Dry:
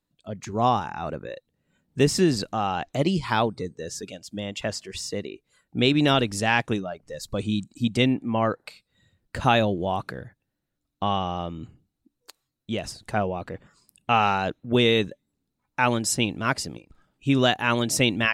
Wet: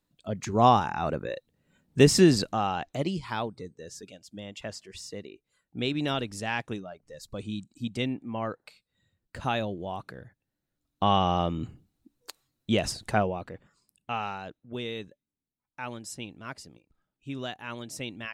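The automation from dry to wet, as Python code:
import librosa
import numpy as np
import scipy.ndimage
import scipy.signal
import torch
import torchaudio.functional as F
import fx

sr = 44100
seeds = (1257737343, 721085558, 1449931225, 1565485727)

y = fx.gain(x, sr, db=fx.line((2.28, 2.0), (3.27, -9.0), (10.07, -9.0), (11.31, 4.0), (12.99, 4.0), (13.52, -6.5), (14.65, -15.5)))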